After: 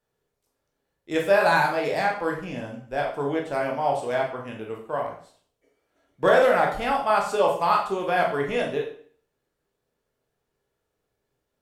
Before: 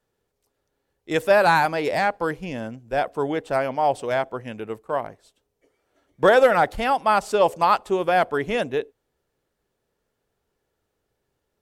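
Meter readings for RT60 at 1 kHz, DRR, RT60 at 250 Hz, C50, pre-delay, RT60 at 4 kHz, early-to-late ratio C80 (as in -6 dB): 0.50 s, -1.0 dB, 0.55 s, 6.0 dB, 7 ms, 0.45 s, 11.0 dB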